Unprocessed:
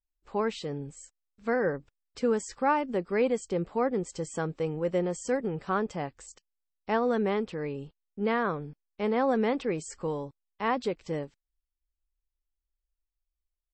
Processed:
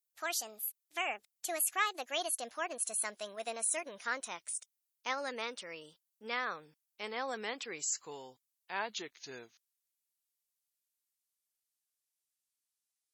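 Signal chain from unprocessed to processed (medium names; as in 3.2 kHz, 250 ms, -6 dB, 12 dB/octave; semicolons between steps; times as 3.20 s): gliding tape speed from 156% -> 53%; differentiator; trim +8.5 dB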